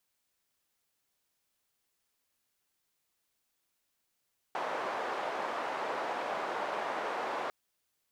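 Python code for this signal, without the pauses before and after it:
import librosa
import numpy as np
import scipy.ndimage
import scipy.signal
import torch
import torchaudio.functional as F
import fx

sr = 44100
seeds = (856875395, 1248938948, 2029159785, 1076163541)

y = fx.band_noise(sr, seeds[0], length_s=2.95, low_hz=610.0, high_hz=790.0, level_db=-35.5)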